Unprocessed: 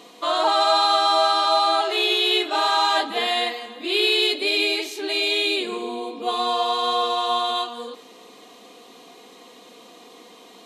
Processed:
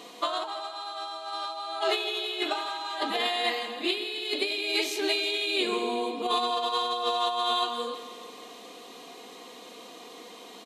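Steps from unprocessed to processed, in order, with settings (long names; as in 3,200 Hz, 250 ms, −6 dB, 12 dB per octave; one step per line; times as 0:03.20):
low-shelf EQ 280 Hz −3.5 dB
compressor whose output falls as the input rises −25 dBFS, ratio −0.5
repeating echo 165 ms, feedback 59%, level −14 dB
level −3.5 dB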